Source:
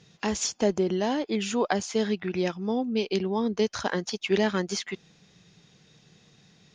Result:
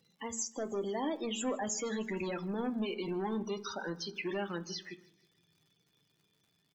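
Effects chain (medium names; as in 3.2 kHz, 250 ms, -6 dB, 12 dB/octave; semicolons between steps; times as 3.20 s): Doppler pass-by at 2.39 s, 25 m/s, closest 17 m; bass shelf 170 Hz -8 dB; in parallel at -4 dB: crossover distortion -42.5 dBFS; on the sum: peak limiter -20.5 dBFS, peak gain reduction 11.5 dB; saturation -31 dBFS, distortion -10 dB; loudest bins only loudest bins 32; treble shelf 5 kHz +8.5 dB; crackle 180 per s -59 dBFS; feedback delay 158 ms, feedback 51%, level -24 dB; on a send at -7.5 dB: reverberation RT60 0.40 s, pre-delay 3 ms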